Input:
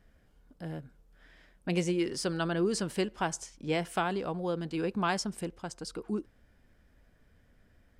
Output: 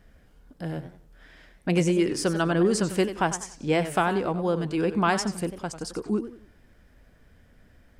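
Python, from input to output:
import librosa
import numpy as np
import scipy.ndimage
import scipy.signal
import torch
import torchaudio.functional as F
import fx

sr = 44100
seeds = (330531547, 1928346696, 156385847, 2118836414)

y = fx.dynamic_eq(x, sr, hz=4000.0, q=1.3, threshold_db=-54.0, ratio=4.0, max_db=-5)
y = fx.echo_warbled(y, sr, ms=94, feedback_pct=33, rate_hz=2.8, cents=189, wet_db=-12.0)
y = y * librosa.db_to_amplitude(7.0)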